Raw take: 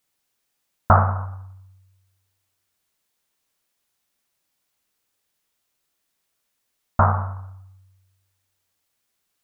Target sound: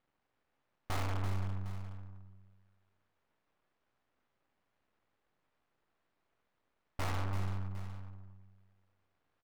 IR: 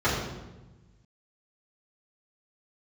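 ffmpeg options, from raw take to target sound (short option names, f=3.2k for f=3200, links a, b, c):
-af "lowpass=1.4k,bandreject=f=180.4:t=h:w=4,bandreject=f=360.8:t=h:w=4,bandreject=f=541.2:t=h:w=4,bandreject=f=721.6:t=h:w=4,bandreject=f=902:t=h:w=4,bandreject=f=1.0824k:t=h:w=4,bandreject=f=1.2628k:t=h:w=4,bandreject=f=1.4432k:t=h:w=4,bandreject=f=1.6236k:t=h:w=4,bandreject=f=1.804k:t=h:w=4,bandreject=f=1.9844k:t=h:w=4,bandreject=f=2.1648k:t=h:w=4,bandreject=f=2.3452k:t=h:w=4,bandreject=f=2.5256k:t=h:w=4,bandreject=f=2.706k:t=h:w=4,bandreject=f=2.8864k:t=h:w=4,bandreject=f=3.0668k:t=h:w=4,bandreject=f=3.2472k:t=h:w=4,bandreject=f=3.4276k:t=h:w=4,bandreject=f=3.608k:t=h:w=4,bandreject=f=3.7884k:t=h:w=4,bandreject=f=3.9688k:t=h:w=4,bandreject=f=4.1492k:t=h:w=4,bandreject=f=4.3296k:t=h:w=4,bandreject=f=4.51k:t=h:w=4,bandreject=f=4.6904k:t=h:w=4,bandreject=f=4.8708k:t=h:w=4,bandreject=f=5.0512k:t=h:w=4,bandreject=f=5.2316k:t=h:w=4,bandreject=f=5.412k:t=h:w=4,bandreject=f=5.5924k:t=h:w=4,bandreject=f=5.7728k:t=h:w=4,bandreject=f=5.9532k:t=h:w=4,aeval=exprs='max(val(0),0)':c=same,aeval=exprs='(tanh(44.7*val(0)+0.65)-tanh(0.65))/44.7':c=same,aecho=1:1:336|756:0.376|0.15,volume=11dB"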